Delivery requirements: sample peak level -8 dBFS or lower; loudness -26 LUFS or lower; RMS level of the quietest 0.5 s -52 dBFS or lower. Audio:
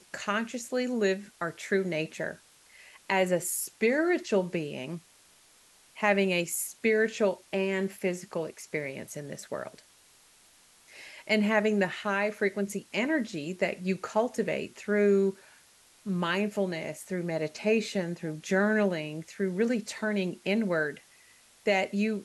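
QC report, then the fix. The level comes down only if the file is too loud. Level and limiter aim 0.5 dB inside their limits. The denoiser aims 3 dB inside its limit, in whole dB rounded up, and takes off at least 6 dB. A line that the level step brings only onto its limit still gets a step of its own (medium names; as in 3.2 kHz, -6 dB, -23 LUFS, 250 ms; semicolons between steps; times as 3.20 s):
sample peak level -11.0 dBFS: pass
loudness -29.5 LUFS: pass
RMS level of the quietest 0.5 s -60 dBFS: pass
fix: none needed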